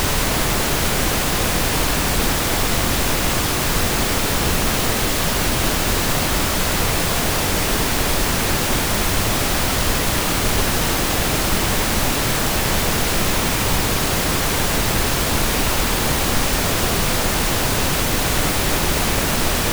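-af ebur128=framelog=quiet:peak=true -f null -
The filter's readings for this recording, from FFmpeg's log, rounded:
Integrated loudness:
  I:         -18.3 LUFS
  Threshold: -28.3 LUFS
Loudness range:
  LRA:         0.1 LU
  Threshold: -38.3 LUFS
  LRA low:   -18.3 LUFS
  LRA high:  -18.2 LUFS
True peak:
  Peak:       -5.0 dBFS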